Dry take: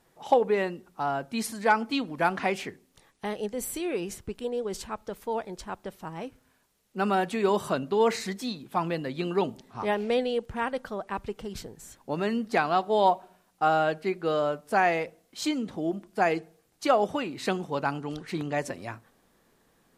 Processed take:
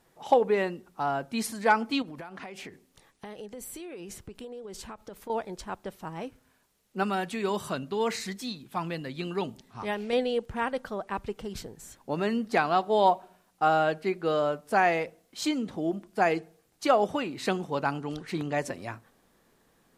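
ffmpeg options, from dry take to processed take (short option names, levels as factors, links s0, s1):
-filter_complex "[0:a]asettb=1/sr,asplit=3[s0][s1][s2];[s0]atrim=end=2.024[s3];[s1]atrim=start=2.02:end=5.3,asetpts=PTS-STARTPTS,afade=t=in:d=0.004:c=qsin,afade=t=out:st=3.276:d=0.004:c=qsin,acompressor=threshold=0.0141:ratio=20:attack=3.2:release=140:knee=1:detection=peak[s4];[s2]atrim=start=5.296[s5];[s3][s4]acrossfade=d=0.004:c1=hsin:c2=qsin[s6];[s6][s5]acrossfade=d=0.004:c1=qsin:c2=hsin,asettb=1/sr,asplit=3[s7][s8][s9];[s7]atrim=end=7.034[s10];[s8]atrim=start=7.03:end=10.13,asetpts=PTS-STARTPTS,afade=t=in:d=0.004:c=qsin,afade=t=out:st=3.096:d=0.004:c=qsin,equalizer=f=540:w=0.46:g=-6[s11];[s9]atrim=start=10.126[s12];[s10][s11]acrossfade=d=0.004:c1=hsin:c2=qsin[s13];[s13][s12]acrossfade=d=0.004:c1=qsin:c2=hsin"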